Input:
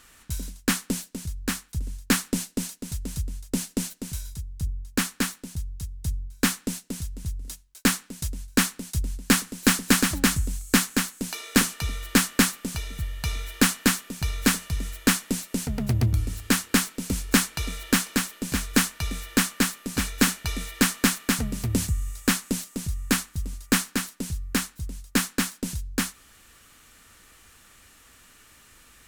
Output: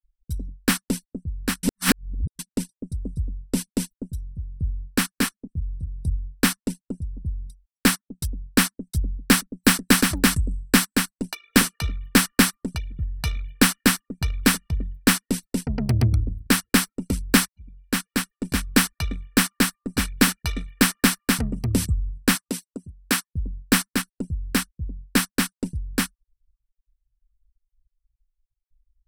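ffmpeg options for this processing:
-filter_complex "[0:a]asettb=1/sr,asplit=3[s0][s1][s2];[s0]atrim=end=5.144[s3];[s1]atrim=start=5.14:end=6.16,asetpts=PTS-STARTPTS,afade=t=in:d=0.004:c=qsin,afade=t=out:st=1.016:d=0.004:c=qsin,asplit=2[s4][s5];[s5]adelay=25,volume=0.398[s6];[s4][s6]amix=inputs=2:normalize=0,atrim=end_sample=44982[s7];[s2]atrim=start=6.156[s8];[s3][s7]acrossfade=d=0.004:c1=hsin:c2=qsin[s9];[s9][s8]acrossfade=d=0.004:c1=qsin:c2=hsin,asettb=1/sr,asplit=3[s10][s11][s12];[s10]atrim=end=22.354[s13];[s11]atrim=start=22.35:end=23.35,asetpts=PTS-STARTPTS,afade=t=in:d=0.004:c=qsin,afade=t=out:st=0.996:d=0.004:c=qsin,highpass=f=340:p=1[s14];[s12]atrim=start=23.346[s15];[s13][s14]acrossfade=d=0.004:c1=hsin:c2=qsin[s16];[s16][s15]acrossfade=d=0.004:c1=qsin:c2=hsin,asplit=4[s17][s18][s19][s20];[s17]atrim=end=1.632[s21];[s18]atrim=start=1.628:end=2.392,asetpts=PTS-STARTPTS,areverse[s22];[s19]atrim=start=2.388:end=17.48,asetpts=PTS-STARTPTS,afade=t=out:st=15.088:d=0.004:c=hsin:silence=0.0841395[s23];[s20]atrim=start=17.48,asetpts=PTS-STARTPTS,afade=t=in:d=0.95:silence=0.0841395[s24];[s21][s22]acrossfade=d=0.004:c1=hsin:c2=hsin[s25];[s23][s24]concat=n=2:v=0:a=1[s26];[s25][s26]acrossfade=d=0.004:c1=hsin:c2=hsin,afftfilt=real='re*gte(hypot(re,im),0.01)':imag='im*gte(hypot(re,im),0.01)':win_size=1024:overlap=0.75,bandreject=f=6800:w=5.2,anlmdn=15.8,volume=1.41"

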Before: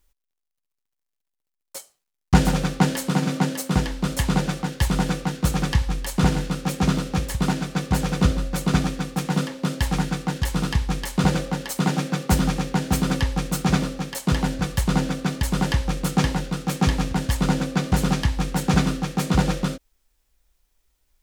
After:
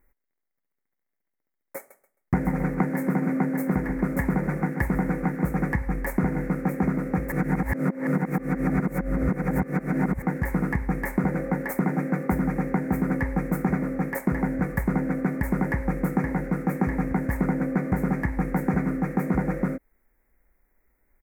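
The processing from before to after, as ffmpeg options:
-filter_complex "[0:a]asettb=1/sr,asplit=3[s0][s1][s2];[s0]atrim=end=1.774[s3];[s1]atrim=start=1.77:end=5.44,asetpts=PTS-STARTPTS,afade=t=in:d=0.004:c=qsin,afade=t=out:st=3.666:d=0.004:c=qsin,aecho=1:1:133|266|399:0.251|0.0578|0.0133,atrim=end_sample=161847[s4];[s2]atrim=start=5.436[s5];[s3][s4]acrossfade=d=0.004:c1=hsin:c2=qsin[s6];[s6][s5]acrossfade=d=0.004:c1=qsin:c2=hsin,asplit=3[s7][s8][s9];[s7]atrim=end=7.322[s10];[s8]atrim=start=7.318:end=10.222,asetpts=PTS-STARTPTS,areverse[s11];[s9]atrim=start=10.218[s12];[s10][s11]acrossfade=d=0.004:c1=hsin:c2=hsin[s13];[s13][s12]acrossfade=d=0.004:c1=hsin:c2=hsin,firequalizer=gain_entry='entry(100,0);entry(220,9);entry(1100,2);entry(2100,9);entry(3000,-30);entry(6000,-17);entry(14000,1)':delay=0.05:min_phase=1,acompressor=threshold=0.0891:ratio=6"

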